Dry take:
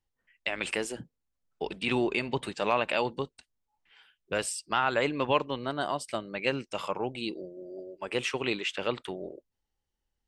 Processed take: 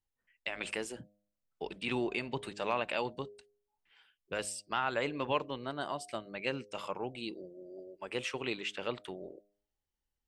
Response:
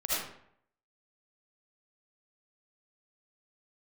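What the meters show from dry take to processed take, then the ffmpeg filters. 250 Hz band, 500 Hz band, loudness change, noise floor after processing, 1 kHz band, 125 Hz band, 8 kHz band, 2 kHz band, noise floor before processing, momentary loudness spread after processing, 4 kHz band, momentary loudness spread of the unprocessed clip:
-6.0 dB, -6.0 dB, -6.0 dB, under -85 dBFS, -6.0 dB, -6.0 dB, -6.0 dB, -6.0 dB, -84 dBFS, 13 LU, -6.0 dB, 12 LU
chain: -af "bandreject=f=102.6:t=h:w=4,bandreject=f=205.2:t=h:w=4,bandreject=f=307.8:t=h:w=4,bandreject=f=410.4:t=h:w=4,bandreject=f=513:t=h:w=4,bandreject=f=615.6:t=h:w=4,bandreject=f=718.2:t=h:w=4,volume=-6dB"

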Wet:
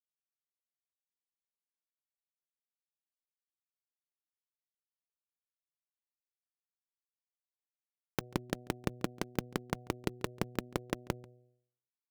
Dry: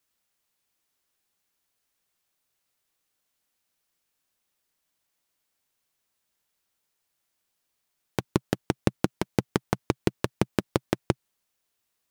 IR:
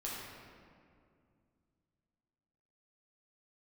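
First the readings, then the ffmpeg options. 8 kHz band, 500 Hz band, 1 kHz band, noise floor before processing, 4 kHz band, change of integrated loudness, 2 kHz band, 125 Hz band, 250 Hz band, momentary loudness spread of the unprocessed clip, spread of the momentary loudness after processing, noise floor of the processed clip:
-7.0 dB, -9.5 dB, -8.0 dB, -79 dBFS, -7.0 dB, -9.5 dB, -7.0 dB, -10.5 dB, -10.0 dB, 4 LU, 4 LU, under -85 dBFS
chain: -filter_complex "[0:a]acrusher=bits=5:dc=4:mix=0:aa=0.000001,bandreject=f=123.1:t=h:w=4,bandreject=f=246.2:t=h:w=4,bandreject=f=369.3:t=h:w=4,bandreject=f=492.4:t=h:w=4,bandreject=f=615.5:t=h:w=4,bandreject=f=738.6:t=h:w=4,acompressor=threshold=-43dB:ratio=3,asplit=2[a][b];[b]adelay=139.9,volume=-25dB,highshelf=f=4k:g=-3.15[c];[a][c]amix=inputs=2:normalize=0,volume=21dB,asoftclip=hard,volume=-21dB,volume=7dB"

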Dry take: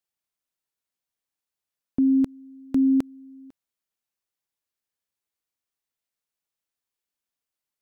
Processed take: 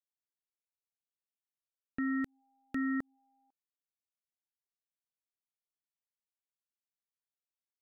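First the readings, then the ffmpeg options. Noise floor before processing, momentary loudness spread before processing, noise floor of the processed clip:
under -85 dBFS, 11 LU, under -85 dBFS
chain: -af "alimiter=level_in=0.5dB:limit=-24dB:level=0:latency=1:release=184,volume=-0.5dB,aeval=exprs='0.0596*(cos(1*acos(clip(val(0)/0.0596,-1,1)))-cos(1*PI/2))+0.000376*(cos(2*acos(clip(val(0)/0.0596,-1,1)))-cos(2*PI/2))+0.0119*(cos(5*acos(clip(val(0)/0.0596,-1,1)))-cos(5*PI/2))+0.0188*(cos(7*acos(clip(val(0)/0.0596,-1,1)))-cos(7*PI/2))':c=same,volume=-5dB"

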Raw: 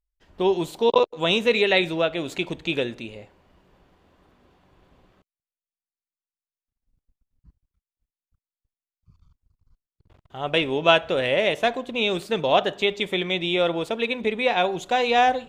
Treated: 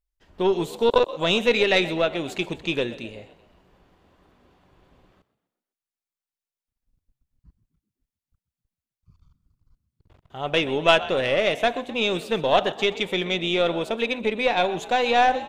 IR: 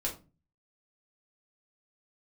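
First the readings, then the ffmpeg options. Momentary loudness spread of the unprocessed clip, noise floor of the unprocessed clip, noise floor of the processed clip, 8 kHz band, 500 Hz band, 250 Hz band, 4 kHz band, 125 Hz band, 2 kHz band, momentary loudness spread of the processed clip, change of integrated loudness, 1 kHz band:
8 LU, under -85 dBFS, under -85 dBFS, n/a, 0.0 dB, 0.0 dB, 0.0 dB, 0.0 dB, 0.0 dB, 8 LU, 0.0 dB, 0.0 dB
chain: -filter_complex "[0:a]asplit=5[a][b][c][d][e];[b]adelay=127,afreqshift=51,volume=-17dB[f];[c]adelay=254,afreqshift=102,volume=-23.2dB[g];[d]adelay=381,afreqshift=153,volume=-29.4dB[h];[e]adelay=508,afreqshift=204,volume=-35.6dB[i];[a][f][g][h][i]amix=inputs=5:normalize=0,aeval=exprs='0.668*(cos(1*acos(clip(val(0)/0.668,-1,1)))-cos(1*PI/2))+0.0531*(cos(4*acos(clip(val(0)/0.668,-1,1)))-cos(4*PI/2))':c=same"

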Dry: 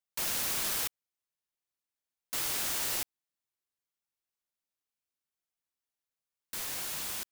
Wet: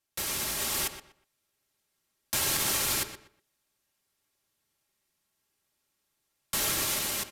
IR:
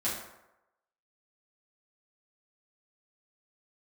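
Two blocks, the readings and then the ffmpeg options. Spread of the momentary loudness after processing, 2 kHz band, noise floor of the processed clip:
8 LU, +5.5 dB, -80 dBFS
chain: -filter_complex "[0:a]aecho=1:1:3.9:0.54,alimiter=level_in=5dB:limit=-24dB:level=0:latency=1:release=299,volume=-5dB,dynaudnorm=f=570:g=3:m=5dB,afreqshift=-440,asplit=2[a][b];[b]adelay=122,lowpass=f=3.6k:p=1,volume=-10dB,asplit=2[c][d];[d]adelay=122,lowpass=f=3.6k:p=1,volume=0.25,asplit=2[e][f];[f]adelay=122,lowpass=f=3.6k:p=1,volume=0.25[g];[a][c][e][g]amix=inputs=4:normalize=0,aresample=32000,aresample=44100,volume=8dB"

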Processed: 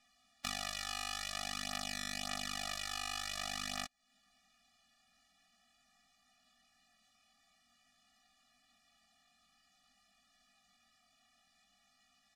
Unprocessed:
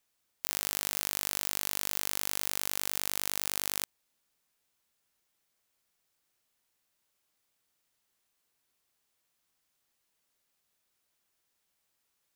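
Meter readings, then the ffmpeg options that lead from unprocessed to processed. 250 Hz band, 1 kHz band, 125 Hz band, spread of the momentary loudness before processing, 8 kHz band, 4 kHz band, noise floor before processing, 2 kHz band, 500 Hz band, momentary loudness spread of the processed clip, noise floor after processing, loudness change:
-0.5 dB, 0.0 dB, -3.5 dB, 3 LU, -9.5 dB, -2.0 dB, -79 dBFS, -2.0 dB, -5.5 dB, 2 LU, -74 dBFS, -8.0 dB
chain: -af "lowpass=5.1k,lowshelf=f=210:g=-5,aecho=1:1:4.1:0.67,acompressor=threshold=-48dB:ratio=3,flanger=delay=19.5:depth=3:speed=0.49,afftfilt=real='re*eq(mod(floor(b*sr/1024/280),2),0)':imag='im*eq(mod(floor(b*sr/1024/280),2),0)':win_size=1024:overlap=0.75,volume=17dB"

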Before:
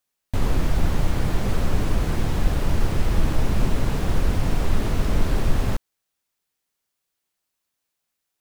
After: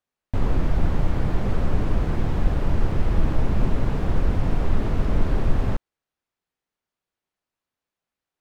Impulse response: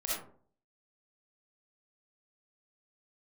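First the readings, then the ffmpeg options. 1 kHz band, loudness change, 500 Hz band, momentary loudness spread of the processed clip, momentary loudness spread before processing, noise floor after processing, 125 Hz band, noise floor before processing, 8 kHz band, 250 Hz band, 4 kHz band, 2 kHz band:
-1.5 dB, -0.5 dB, -0.5 dB, 2 LU, 2 LU, under -85 dBFS, 0.0 dB, -80 dBFS, under -10 dB, 0.0 dB, -7.5 dB, -3.5 dB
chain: -af "lowpass=f=1.6k:p=1"

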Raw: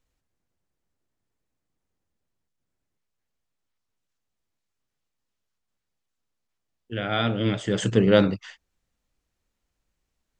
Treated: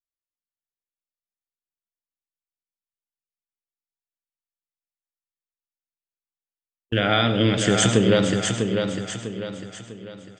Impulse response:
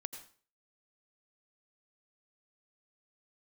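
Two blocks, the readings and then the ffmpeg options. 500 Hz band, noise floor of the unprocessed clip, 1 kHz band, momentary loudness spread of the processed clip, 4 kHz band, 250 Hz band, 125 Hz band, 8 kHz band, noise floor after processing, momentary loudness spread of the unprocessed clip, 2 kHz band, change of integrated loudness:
+2.0 dB, -81 dBFS, +5.5 dB, 20 LU, +8.0 dB, +3.0 dB, +4.0 dB, +14.5 dB, under -85 dBFS, 15 LU, +6.0 dB, +1.5 dB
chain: -filter_complex "[0:a]agate=range=-40dB:threshold=-39dB:ratio=16:detection=peak,highshelf=f=4.7k:g=7.5,acompressor=threshold=-25dB:ratio=6,aecho=1:1:649|1298|1947|2596|3245:0.531|0.218|0.0892|0.0366|0.015,asplit=2[a][b];[1:a]atrim=start_sample=2205,highshelf=f=5.8k:g=5[c];[b][c]afir=irnorm=-1:irlink=0,volume=6dB[d];[a][d]amix=inputs=2:normalize=0,volume=1.5dB"

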